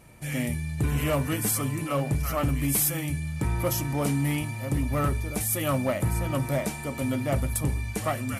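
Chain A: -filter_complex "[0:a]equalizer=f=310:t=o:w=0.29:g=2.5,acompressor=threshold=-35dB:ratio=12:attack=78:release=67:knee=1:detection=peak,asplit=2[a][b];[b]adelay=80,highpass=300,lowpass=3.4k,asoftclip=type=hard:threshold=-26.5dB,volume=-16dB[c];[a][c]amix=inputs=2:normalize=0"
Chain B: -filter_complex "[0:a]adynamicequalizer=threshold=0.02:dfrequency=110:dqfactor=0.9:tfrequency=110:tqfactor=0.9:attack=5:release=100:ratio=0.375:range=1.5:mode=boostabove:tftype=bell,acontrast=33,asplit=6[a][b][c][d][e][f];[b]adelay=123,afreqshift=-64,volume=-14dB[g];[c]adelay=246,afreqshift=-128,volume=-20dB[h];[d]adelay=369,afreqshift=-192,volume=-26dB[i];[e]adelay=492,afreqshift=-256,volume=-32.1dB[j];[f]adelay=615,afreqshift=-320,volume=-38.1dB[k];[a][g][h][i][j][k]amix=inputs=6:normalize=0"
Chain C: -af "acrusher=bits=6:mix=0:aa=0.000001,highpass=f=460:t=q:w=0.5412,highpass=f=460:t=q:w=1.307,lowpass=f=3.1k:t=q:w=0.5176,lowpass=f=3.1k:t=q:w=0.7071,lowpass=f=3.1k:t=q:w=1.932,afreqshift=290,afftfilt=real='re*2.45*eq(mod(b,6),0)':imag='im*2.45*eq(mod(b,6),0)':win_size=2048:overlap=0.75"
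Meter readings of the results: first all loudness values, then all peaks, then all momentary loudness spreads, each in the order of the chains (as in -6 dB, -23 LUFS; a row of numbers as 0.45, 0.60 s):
-33.0, -21.0, -37.0 LUFS; -18.5, -9.5, -16.5 dBFS; 3, 4, 13 LU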